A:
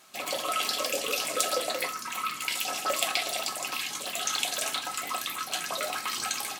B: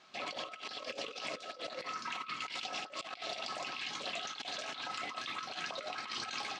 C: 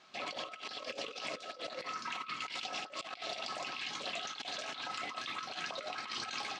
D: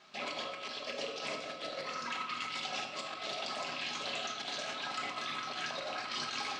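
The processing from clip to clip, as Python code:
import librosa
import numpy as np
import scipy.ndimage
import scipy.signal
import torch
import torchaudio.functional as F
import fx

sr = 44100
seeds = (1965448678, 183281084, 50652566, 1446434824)

y1 = scipy.signal.sosfilt(scipy.signal.butter(4, 5100.0, 'lowpass', fs=sr, output='sos'), x)
y1 = fx.over_compress(y1, sr, threshold_db=-35.0, ratio=-0.5)
y1 = y1 * librosa.db_to_amplitude(-6.0)
y2 = y1
y3 = fx.room_shoebox(y2, sr, seeds[0], volume_m3=710.0, walls='mixed', distance_m=1.3)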